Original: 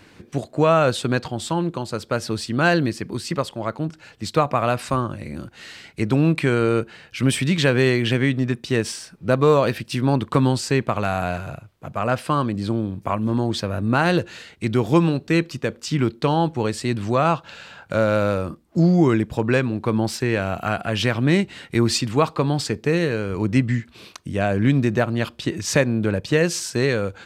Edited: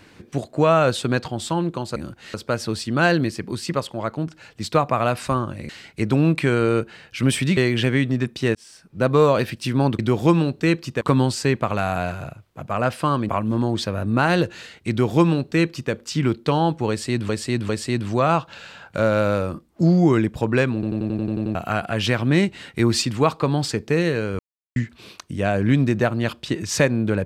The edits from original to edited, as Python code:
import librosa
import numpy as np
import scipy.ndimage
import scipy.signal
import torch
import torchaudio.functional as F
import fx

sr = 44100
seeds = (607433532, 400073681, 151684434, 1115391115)

y = fx.edit(x, sr, fx.move(start_s=5.31, length_s=0.38, to_s=1.96),
    fx.cut(start_s=7.57, length_s=0.28),
    fx.fade_in_span(start_s=8.83, length_s=0.55),
    fx.cut(start_s=12.55, length_s=0.5),
    fx.duplicate(start_s=14.66, length_s=1.02, to_s=10.27),
    fx.repeat(start_s=16.65, length_s=0.4, count=3),
    fx.stutter_over(start_s=19.7, slice_s=0.09, count=9),
    fx.silence(start_s=23.35, length_s=0.37), tone=tone)